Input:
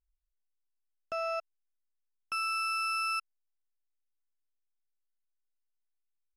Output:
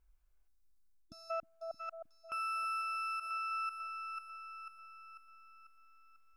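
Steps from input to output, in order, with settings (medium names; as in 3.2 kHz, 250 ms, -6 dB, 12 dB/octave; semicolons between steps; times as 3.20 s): reverse; compression 6:1, threshold -42 dBFS, peak gain reduction 11.5 dB; reverse; time-frequency box 0.48–1.31 s, 330–3500 Hz -29 dB; on a send: two-band feedback delay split 910 Hz, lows 312 ms, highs 494 ms, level -9.5 dB; on the sum: peak limiter -43 dBFS, peak gain reduction 11.5 dB; resonant high shelf 2.5 kHz -7 dB, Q 1.5; band-stop 1.9 kHz, Q 5.8; trim +12.5 dB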